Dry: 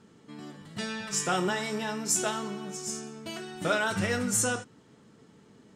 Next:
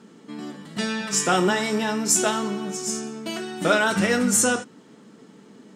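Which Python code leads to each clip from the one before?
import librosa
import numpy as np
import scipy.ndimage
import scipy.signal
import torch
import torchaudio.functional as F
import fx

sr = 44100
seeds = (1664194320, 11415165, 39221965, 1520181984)

y = fx.low_shelf_res(x, sr, hz=140.0, db=-12.5, q=1.5)
y = F.gain(torch.from_numpy(y), 7.0).numpy()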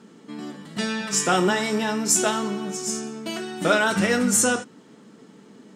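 y = x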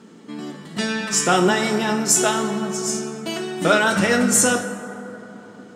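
y = fx.rev_plate(x, sr, seeds[0], rt60_s=3.5, hf_ratio=0.35, predelay_ms=0, drr_db=8.5)
y = F.gain(torch.from_numpy(y), 3.0).numpy()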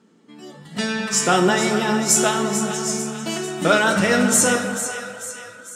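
y = fx.echo_split(x, sr, split_hz=1100.0, low_ms=212, high_ms=444, feedback_pct=52, wet_db=-10)
y = fx.noise_reduce_blind(y, sr, reduce_db=11)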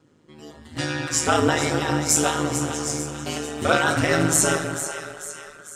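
y = x * np.sin(2.0 * np.pi * 77.0 * np.arange(len(x)) / sr)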